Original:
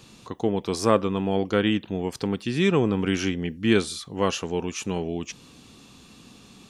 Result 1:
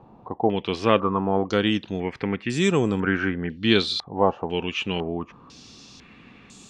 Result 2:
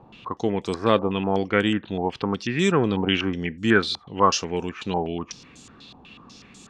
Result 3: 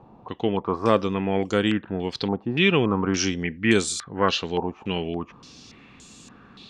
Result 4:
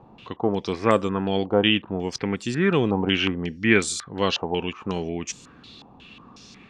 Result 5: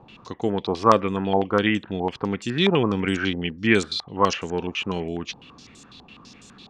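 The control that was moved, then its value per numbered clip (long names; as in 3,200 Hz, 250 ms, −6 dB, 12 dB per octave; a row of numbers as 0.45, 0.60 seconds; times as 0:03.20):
low-pass on a step sequencer, speed: 2, 8.1, 3.5, 5.5, 12 Hertz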